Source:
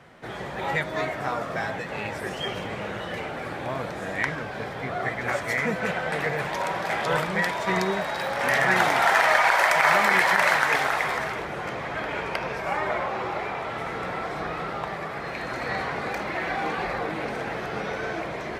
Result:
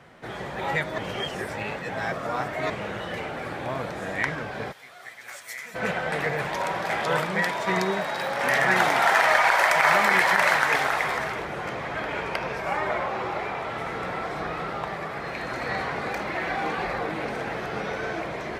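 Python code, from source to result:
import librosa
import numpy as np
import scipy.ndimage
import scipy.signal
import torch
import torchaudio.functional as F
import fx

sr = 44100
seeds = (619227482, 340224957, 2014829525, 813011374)

y = fx.pre_emphasis(x, sr, coefficient=0.97, at=(4.71, 5.74), fade=0.02)
y = fx.highpass(y, sr, hz=110.0, slope=12, at=(7.06, 9.22))
y = fx.edit(y, sr, fx.reverse_span(start_s=0.98, length_s=1.72), tone=tone)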